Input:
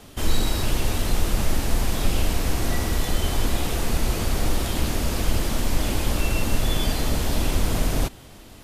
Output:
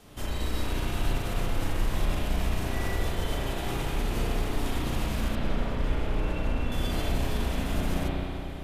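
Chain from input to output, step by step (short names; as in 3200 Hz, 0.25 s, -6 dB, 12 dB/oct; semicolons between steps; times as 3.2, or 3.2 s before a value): 5.35–6.72 LPF 1800 Hz 6 dB/oct; limiter -17.5 dBFS, peak gain reduction 9.5 dB; spring tank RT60 2.8 s, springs 33/59 ms, chirp 70 ms, DRR -7 dB; gain -8.5 dB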